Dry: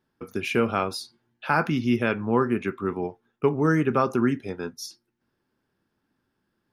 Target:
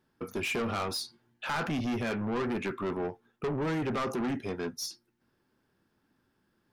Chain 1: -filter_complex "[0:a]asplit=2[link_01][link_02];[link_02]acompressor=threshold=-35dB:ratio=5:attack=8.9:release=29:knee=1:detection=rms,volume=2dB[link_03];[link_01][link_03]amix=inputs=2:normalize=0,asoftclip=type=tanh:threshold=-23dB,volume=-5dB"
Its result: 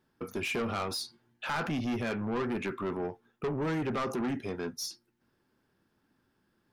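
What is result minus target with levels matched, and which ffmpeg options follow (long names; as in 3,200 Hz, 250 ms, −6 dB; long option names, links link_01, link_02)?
downward compressor: peak gain reduction +7 dB
-filter_complex "[0:a]asplit=2[link_01][link_02];[link_02]acompressor=threshold=-26.5dB:ratio=5:attack=8.9:release=29:knee=1:detection=rms,volume=2dB[link_03];[link_01][link_03]amix=inputs=2:normalize=0,asoftclip=type=tanh:threshold=-23dB,volume=-5dB"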